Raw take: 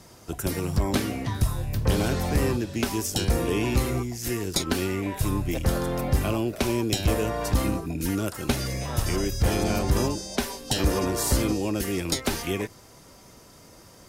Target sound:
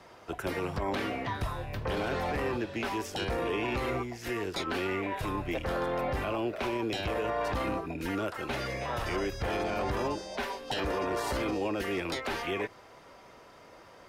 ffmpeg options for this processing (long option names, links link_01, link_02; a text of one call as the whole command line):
ffmpeg -i in.wav -filter_complex "[0:a]acrossover=split=400 3400:gain=0.224 1 0.1[link_01][link_02][link_03];[link_01][link_02][link_03]amix=inputs=3:normalize=0,alimiter=level_in=2dB:limit=-24dB:level=0:latency=1:release=12,volume=-2dB,volume=2.5dB" out.wav